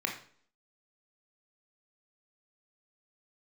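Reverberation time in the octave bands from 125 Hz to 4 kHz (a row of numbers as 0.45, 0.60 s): 0.50, 0.60, 0.55, 0.50, 0.45, 0.45 s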